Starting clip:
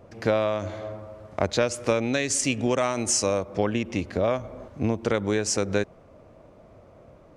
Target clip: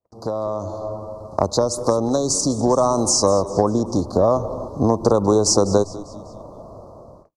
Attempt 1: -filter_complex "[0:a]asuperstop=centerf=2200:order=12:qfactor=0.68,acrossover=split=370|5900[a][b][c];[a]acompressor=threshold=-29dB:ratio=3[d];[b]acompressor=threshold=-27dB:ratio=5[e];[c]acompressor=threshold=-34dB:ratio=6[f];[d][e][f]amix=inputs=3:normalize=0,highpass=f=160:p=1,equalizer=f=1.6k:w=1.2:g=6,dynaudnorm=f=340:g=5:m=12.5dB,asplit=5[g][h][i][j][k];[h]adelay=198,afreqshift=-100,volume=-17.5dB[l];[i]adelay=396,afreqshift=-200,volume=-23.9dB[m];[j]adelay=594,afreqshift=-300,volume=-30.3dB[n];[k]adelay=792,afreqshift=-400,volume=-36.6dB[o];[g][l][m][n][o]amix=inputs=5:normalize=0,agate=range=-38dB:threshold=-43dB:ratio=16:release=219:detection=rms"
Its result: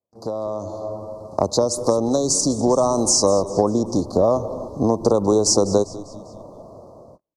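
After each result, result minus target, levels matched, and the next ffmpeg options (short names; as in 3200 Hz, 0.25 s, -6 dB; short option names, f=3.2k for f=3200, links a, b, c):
2000 Hz band -7.5 dB; 125 Hz band -2.5 dB
-filter_complex "[0:a]asuperstop=centerf=2200:order=12:qfactor=0.68,acrossover=split=370|5900[a][b][c];[a]acompressor=threshold=-29dB:ratio=3[d];[b]acompressor=threshold=-27dB:ratio=5[e];[c]acompressor=threshold=-34dB:ratio=6[f];[d][e][f]amix=inputs=3:normalize=0,highpass=f=160:p=1,equalizer=f=1.6k:w=1.2:g=16,dynaudnorm=f=340:g=5:m=12.5dB,asplit=5[g][h][i][j][k];[h]adelay=198,afreqshift=-100,volume=-17.5dB[l];[i]adelay=396,afreqshift=-200,volume=-23.9dB[m];[j]adelay=594,afreqshift=-300,volume=-30.3dB[n];[k]adelay=792,afreqshift=-400,volume=-36.6dB[o];[g][l][m][n][o]amix=inputs=5:normalize=0,agate=range=-38dB:threshold=-43dB:ratio=16:release=219:detection=rms"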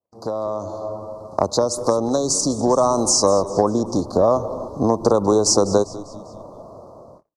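125 Hz band -3.5 dB
-filter_complex "[0:a]asuperstop=centerf=2200:order=12:qfactor=0.68,acrossover=split=370|5900[a][b][c];[a]acompressor=threshold=-29dB:ratio=3[d];[b]acompressor=threshold=-27dB:ratio=5[e];[c]acompressor=threshold=-34dB:ratio=6[f];[d][e][f]amix=inputs=3:normalize=0,equalizer=f=1.6k:w=1.2:g=16,dynaudnorm=f=340:g=5:m=12.5dB,asplit=5[g][h][i][j][k];[h]adelay=198,afreqshift=-100,volume=-17.5dB[l];[i]adelay=396,afreqshift=-200,volume=-23.9dB[m];[j]adelay=594,afreqshift=-300,volume=-30.3dB[n];[k]adelay=792,afreqshift=-400,volume=-36.6dB[o];[g][l][m][n][o]amix=inputs=5:normalize=0,agate=range=-38dB:threshold=-43dB:ratio=16:release=219:detection=rms"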